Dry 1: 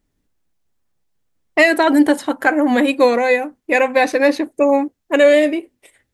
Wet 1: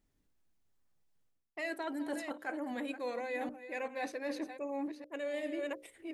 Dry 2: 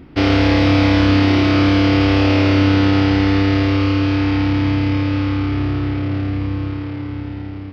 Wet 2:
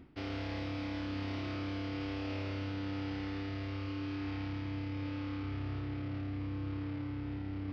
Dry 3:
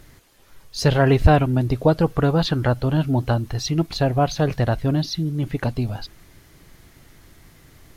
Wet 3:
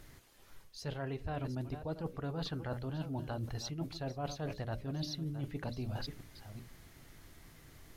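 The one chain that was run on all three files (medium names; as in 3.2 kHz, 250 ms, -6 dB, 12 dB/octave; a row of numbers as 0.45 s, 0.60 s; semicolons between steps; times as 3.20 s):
chunks repeated in reverse 388 ms, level -14 dB; hum notches 60/120/180/240/300/360/420/480/540/600 Hz; reverse; compression 16:1, threshold -28 dBFS; reverse; trim -7 dB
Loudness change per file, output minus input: -24.0 LU, -23.0 LU, -20.0 LU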